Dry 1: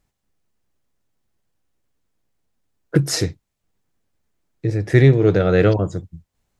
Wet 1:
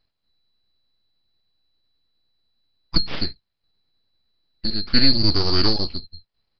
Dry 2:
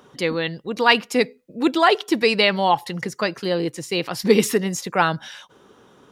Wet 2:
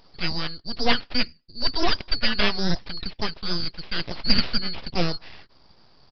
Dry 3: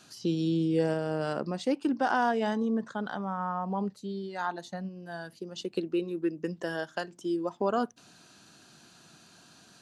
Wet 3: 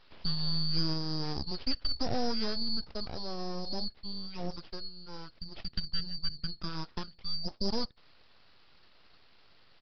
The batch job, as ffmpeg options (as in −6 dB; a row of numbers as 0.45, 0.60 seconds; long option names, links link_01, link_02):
-af "afftfilt=real='real(if(lt(b,920),b+92*(1-2*mod(floor(b/92),2)),b),0)':imag='imag(if(lt(b,920),b+92*(1-2*mod(floor(b/92),2)),b),0)':win_size=2048:overlap=0.75,aeval=exprs='abs(val(0))':channel_layout=same,aresample=11025,aresample=44100,volume=-1dB"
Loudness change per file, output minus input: −3.5, −5.5, −4.0 LU